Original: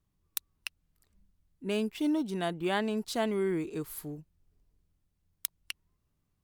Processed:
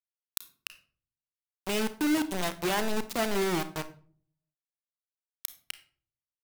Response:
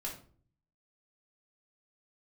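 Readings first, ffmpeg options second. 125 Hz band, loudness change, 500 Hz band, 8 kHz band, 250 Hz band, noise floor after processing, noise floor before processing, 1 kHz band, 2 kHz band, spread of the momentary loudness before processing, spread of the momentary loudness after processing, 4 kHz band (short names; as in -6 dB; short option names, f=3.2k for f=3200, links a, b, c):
0.0 dB, +2.5 dB, +0.5 dB, +5.5 dB, +0.5 dB, under -85 dBFS, -78 dBFS, +4.0 dB, +5.0 dB, 14 LU, 15 LU, +4.5 dB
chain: -filter_complex "[0:a]acrusher=bits=4:mix=0:aa=0.000001,asplit=2[a][b];[1:a]atrim=start_sample=2205,adelay=33[c];[b][c]afir=irnorm=-1:irlink=0,volume=-11.5dB[d];[a][d]amix=inputs=2:normalize=0"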